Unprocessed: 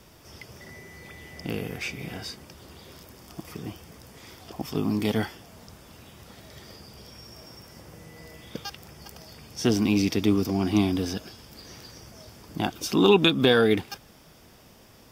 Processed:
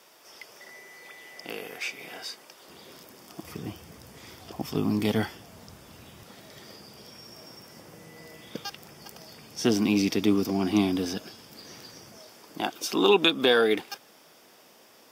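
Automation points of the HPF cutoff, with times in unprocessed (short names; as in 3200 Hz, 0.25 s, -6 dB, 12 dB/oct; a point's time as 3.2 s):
500 Hz
from 2.68 s 210 Hz
from 3.43 s 68 Hz
from 6.23 s 160 Hz
from 12.18 s 340 Hz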